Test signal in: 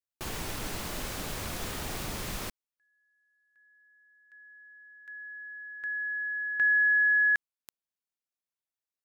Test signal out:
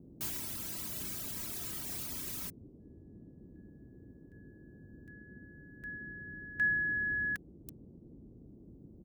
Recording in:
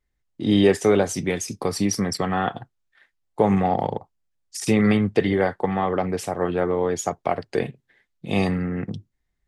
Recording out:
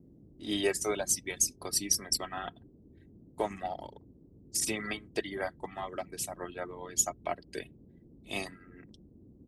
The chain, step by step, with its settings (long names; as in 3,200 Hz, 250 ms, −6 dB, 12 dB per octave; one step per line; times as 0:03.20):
reverb reduction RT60 1.1 s
RIAA equalisation recording
comb filter 3.1 ms, depth 47%
noise in a band 35–330 Hz −38 dBFS
expander for the loud parts 1.5 to 1, over −37 dBFS
level −7.5 dB